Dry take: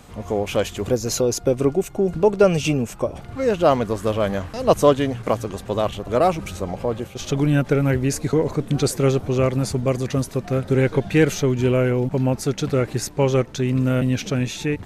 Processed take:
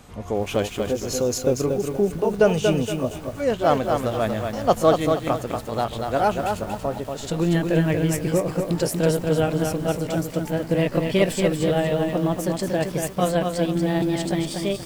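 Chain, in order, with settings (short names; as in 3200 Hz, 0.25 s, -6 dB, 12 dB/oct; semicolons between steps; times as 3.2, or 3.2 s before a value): gliding pitch shift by +5 st starting unshifted; lo-fi delay 0.235 s, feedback 35%, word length 7-bit, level -4.5 dB; gain -2 dB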